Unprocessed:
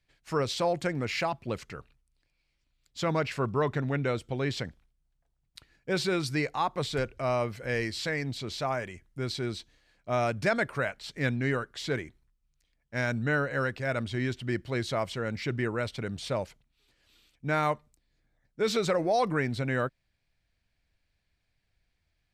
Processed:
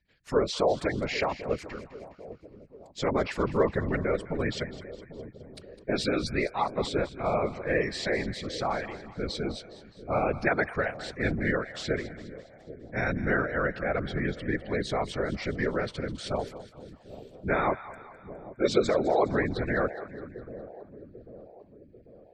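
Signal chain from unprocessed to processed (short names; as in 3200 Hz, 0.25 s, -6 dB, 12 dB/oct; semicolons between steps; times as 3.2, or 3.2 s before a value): spectral gate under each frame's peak -25 dB strong; small resonant body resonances 470/1800 Hz, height 7 dB; whisperiser; on a send: split-band echo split 720 Hz, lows 0.793 s, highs 0.206 s, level -14.5 dB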